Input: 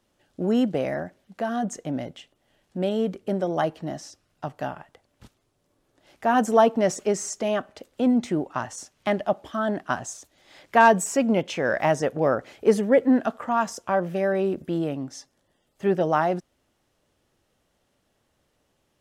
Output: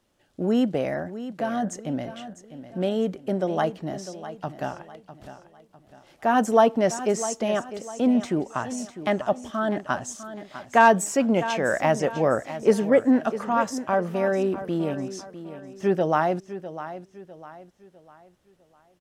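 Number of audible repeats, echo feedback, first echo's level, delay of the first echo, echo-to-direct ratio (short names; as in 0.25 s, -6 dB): 3, 38%, -13.0 dB, 0.652 s, -12.5 dB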